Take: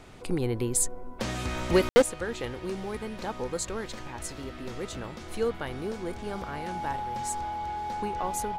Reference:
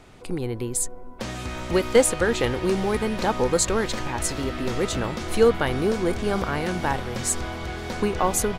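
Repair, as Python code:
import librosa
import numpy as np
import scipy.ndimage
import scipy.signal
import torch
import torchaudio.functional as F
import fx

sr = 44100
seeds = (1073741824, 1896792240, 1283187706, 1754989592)

y = fx.fix_declip(x, sr, threshold_db=-13.5)
y = fx.notch(y, sr, hz=840.0, q=30.0)
y = fx.fix_ambience(y, sr, seeds[0], print_start_s=4.85, print_end_s=5.35, start_s=1.89, end_s=1.96)
y = fx.gain(y, sr, db=fx.steps((0.0, 0.0), (2.02, 11.0)))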